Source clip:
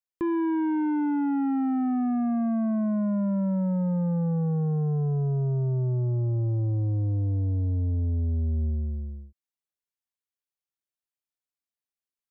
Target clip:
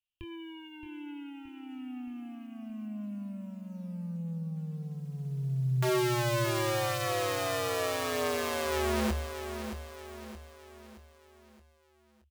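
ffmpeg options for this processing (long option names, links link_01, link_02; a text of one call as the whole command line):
ffmpeg -i in.wav -filter_complex "[0:a]firequalizer=gain_entry='entry(100,0);entry(150,-18);entry(310,-26);entry(820,-28);entry(1900,-18);entry(2800,8);entry(4500,-15)':delay=0.05:min_phase=1,asplit=2[link_01][link_02];[link_02]alimiter=level_in=5.5dB:limit=-24dB:level=0:latency=1,volume=-5.5dB,volume=-1.5dB[link_03];[link_01][link_03]amix=inputs=2:normalize=0,acrusher=bits=9:mode=log:mix=0:aa=0.000001,aeval=exprs='(mod(21.1*val(0)+1,2)-1)/21.1':channel_layout=same,asplit=2[link_04][link_05];[link_05]adelay=24,volume=-8dB[link_06];[link_04][link_06]amix=inputs=2:normalize=0,asplit=2[link_07][link_08];[link_08]aecho=0:1:622|1244|1866|2488|3110:0.355|0.163|0.0751|0.0345|0.0159[link_09];[link_07][link_09]amix=inputs=2:normalize=0" out.wav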